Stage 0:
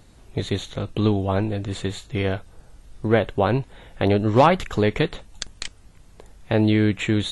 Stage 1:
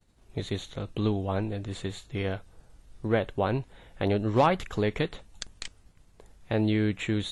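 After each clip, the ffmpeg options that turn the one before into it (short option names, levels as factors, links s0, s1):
-af "agate=range=0.0224:threshold=0.00631:ratio=3:detection=peak,volume=0.447"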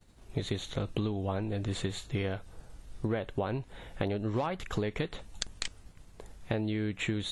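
-af "acompressor=threshold=0.0224:ratio=12,volume=1.78"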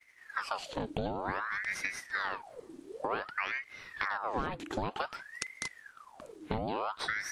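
-af "aeval=exprs='val(0)*sin(2*PI*1200*n/s+1200*0.75/0.54*sin(2*PI*0.54*n/s))':c=same"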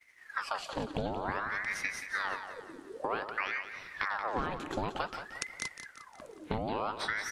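-af "aecho=1:1:178|356|534|712|890:0.316|0.142|0.064|0.0288|0.013"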